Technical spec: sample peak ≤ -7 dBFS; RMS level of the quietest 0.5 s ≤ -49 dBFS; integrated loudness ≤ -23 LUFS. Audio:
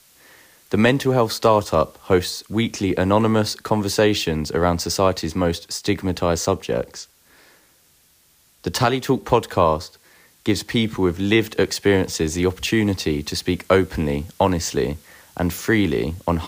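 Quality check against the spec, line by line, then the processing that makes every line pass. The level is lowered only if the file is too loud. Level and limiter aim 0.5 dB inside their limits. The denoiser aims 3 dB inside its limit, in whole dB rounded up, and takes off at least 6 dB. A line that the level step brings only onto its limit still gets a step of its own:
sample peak -4.5 dBFS: fail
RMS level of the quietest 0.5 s -57 dBFS: OK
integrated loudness -20.5 LUFS: fail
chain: gain -3 dB

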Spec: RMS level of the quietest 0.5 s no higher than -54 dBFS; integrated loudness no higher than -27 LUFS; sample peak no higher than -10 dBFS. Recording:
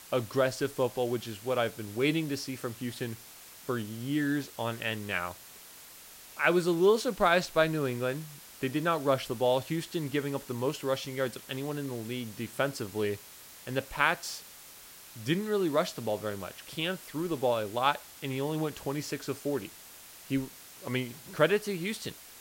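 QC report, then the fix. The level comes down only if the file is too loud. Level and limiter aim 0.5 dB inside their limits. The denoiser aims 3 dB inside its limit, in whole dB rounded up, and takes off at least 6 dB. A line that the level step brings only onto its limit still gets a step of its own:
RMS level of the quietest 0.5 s -51 dBFS: fail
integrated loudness -31.0 LUFS: OK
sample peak -9.0 dBFS: fail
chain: denoiser 6 dB, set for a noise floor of -51 dBFS; limiter -10.5 dBFS

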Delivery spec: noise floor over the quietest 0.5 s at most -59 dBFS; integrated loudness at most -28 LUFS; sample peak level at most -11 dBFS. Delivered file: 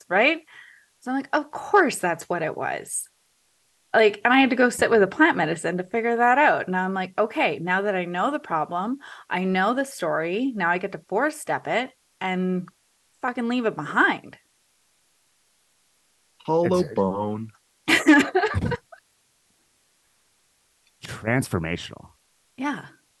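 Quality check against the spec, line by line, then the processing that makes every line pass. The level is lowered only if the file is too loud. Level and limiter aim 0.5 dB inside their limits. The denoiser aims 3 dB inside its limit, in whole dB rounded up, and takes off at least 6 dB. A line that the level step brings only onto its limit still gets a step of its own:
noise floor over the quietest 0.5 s -66 dBFS: OK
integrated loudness -23.0 LUFS: fail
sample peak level -5.5 dBFS: fail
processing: gain -5.5 dB; limiter -11.5 dBFS

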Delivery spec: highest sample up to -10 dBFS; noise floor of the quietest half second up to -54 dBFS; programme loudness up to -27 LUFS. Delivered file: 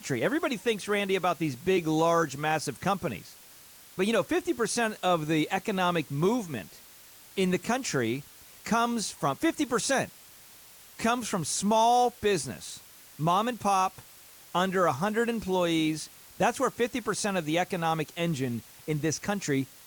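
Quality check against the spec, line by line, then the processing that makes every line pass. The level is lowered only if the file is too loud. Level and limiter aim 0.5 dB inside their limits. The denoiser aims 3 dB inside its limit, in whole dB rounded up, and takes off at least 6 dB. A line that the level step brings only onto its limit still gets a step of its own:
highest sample -14.5 dBFS: OK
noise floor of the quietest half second -52 dBFS: fail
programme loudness -28.0 LUFS: OK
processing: denoiser 6 dB, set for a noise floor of -52 dBFS

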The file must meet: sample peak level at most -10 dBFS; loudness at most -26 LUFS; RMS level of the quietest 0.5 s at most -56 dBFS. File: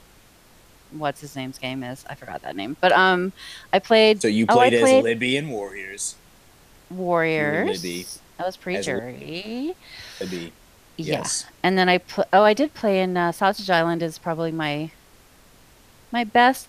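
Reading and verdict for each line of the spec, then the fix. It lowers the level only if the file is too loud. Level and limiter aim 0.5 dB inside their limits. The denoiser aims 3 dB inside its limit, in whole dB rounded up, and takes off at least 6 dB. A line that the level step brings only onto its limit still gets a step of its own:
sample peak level -4.5 dBFS: fail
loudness -21.5 LUFS: fail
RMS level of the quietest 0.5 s -52 dBFS: fail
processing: gain -5 dB; limiter -10.5 dBFS

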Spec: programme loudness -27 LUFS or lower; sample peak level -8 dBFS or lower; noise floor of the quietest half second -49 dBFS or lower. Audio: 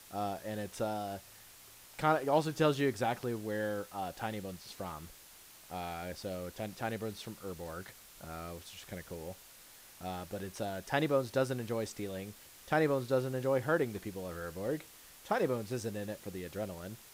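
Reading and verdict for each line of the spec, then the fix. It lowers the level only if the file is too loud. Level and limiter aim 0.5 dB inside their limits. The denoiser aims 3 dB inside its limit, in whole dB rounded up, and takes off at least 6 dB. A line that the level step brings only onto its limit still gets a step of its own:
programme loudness -36.0 LUFS: OK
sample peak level -15.5 dBFS: OK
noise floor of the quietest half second -56 dBFS: OK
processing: none

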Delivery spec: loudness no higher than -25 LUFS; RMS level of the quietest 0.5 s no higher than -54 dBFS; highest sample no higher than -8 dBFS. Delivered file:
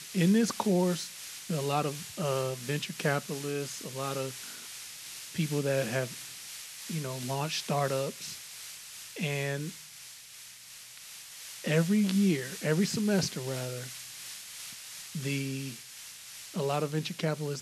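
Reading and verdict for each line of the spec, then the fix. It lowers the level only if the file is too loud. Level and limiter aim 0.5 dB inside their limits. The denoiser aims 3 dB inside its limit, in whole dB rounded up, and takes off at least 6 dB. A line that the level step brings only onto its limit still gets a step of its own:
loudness -32.0 LUFS: OK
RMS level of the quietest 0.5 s -49 dBFS: fail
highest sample -14.0 dBFS: OK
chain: denoiser 8 dB, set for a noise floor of -49 dBFS

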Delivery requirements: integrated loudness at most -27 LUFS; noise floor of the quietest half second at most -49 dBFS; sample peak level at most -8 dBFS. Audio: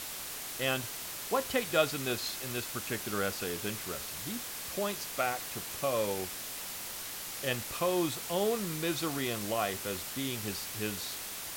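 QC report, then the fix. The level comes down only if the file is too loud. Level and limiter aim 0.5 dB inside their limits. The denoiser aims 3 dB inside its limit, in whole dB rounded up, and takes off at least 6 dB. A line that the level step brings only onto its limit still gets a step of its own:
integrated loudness -33.5 LUFS: OK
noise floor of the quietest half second -41 dBFS: fail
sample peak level -13.5 dBFS: OK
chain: denoiser 11 dB, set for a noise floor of -41 dBFS

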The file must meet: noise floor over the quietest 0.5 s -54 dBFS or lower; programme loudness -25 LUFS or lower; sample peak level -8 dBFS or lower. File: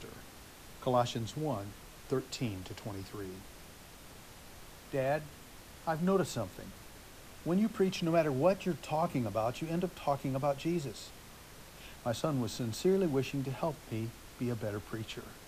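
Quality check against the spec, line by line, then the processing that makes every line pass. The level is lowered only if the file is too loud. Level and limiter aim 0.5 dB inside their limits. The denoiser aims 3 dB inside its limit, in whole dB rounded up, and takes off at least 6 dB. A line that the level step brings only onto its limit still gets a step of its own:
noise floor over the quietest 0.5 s -52 dBFS: fail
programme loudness -34.5 LUFS: OK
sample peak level -16.0 dBFS: OK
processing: denoiser 6 dB, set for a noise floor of -52 dBFS

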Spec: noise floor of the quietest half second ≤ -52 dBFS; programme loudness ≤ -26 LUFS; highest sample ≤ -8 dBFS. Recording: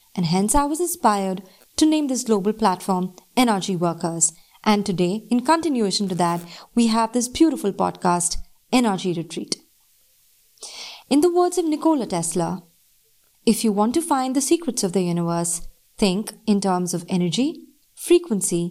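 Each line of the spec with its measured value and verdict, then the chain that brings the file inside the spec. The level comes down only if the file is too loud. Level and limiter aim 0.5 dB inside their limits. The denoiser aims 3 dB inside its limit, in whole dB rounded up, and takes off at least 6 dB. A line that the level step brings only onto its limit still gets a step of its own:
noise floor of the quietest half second -60 dBFS: OK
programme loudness -21.5 LUFS: fail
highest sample -5.0 dBFS: fail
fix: gain -5 dB

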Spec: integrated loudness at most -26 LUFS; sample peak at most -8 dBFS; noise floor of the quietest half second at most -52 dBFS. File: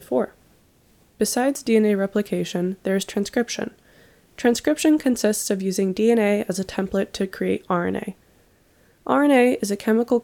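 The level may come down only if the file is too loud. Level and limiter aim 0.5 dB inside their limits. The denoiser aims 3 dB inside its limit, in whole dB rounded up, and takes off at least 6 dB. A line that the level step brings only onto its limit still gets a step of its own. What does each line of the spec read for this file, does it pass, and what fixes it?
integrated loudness -22.0 LUFS: fail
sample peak -4.5 dBFS: fail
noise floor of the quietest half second -58 dBFS: OK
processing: gain -4.5 dB

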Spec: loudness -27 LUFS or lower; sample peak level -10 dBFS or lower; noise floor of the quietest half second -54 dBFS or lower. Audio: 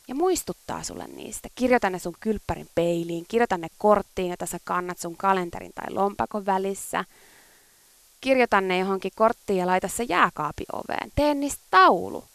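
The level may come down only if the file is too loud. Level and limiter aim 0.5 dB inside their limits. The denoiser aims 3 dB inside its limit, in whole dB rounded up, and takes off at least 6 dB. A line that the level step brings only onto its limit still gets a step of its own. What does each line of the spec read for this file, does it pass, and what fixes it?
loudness -24.5 LUFS: fail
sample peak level -4.0 dBFS: fail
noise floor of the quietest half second -57 dBFS: OK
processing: gain -3 dB; limiter -10.5 dBFS

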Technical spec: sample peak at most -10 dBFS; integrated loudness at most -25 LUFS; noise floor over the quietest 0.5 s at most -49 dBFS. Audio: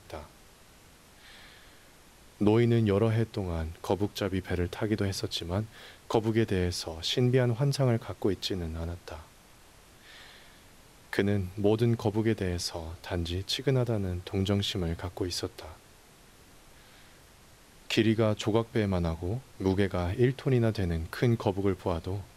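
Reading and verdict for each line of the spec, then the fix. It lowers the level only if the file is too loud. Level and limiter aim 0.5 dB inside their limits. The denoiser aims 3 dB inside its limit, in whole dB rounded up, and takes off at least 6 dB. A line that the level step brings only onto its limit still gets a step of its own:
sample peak -12.0 dBFS: OK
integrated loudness -29.5 LUFS: OK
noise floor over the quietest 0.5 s -56 dBFS: OK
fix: none

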